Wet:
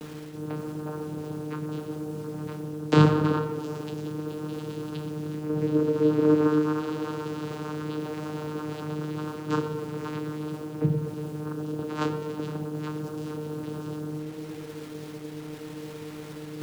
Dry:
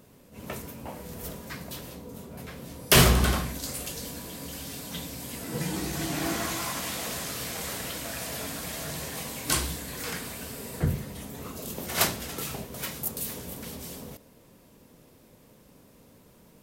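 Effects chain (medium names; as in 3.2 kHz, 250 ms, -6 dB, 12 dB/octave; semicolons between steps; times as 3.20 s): hum notches 50/100/150/200 Hz; small resonant body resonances 330/1100/3100 Hz, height 17 dB, ringing for 90 ms; in parallel at -3 dB: compression 5:1, threshold -37 dBFS, peak gain reduction 23 dB; on the sum: treble shelf 3.1 kHz -6 dB; vocoder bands 8, saw 152 Hz; bit crusher 9-bit; tape echo 123 ms, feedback 77%, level -9.5 dB, low-pass 1.2 kHz; reverse; upward compressor, threshold -27 dBFS; reverse; trim -1 dB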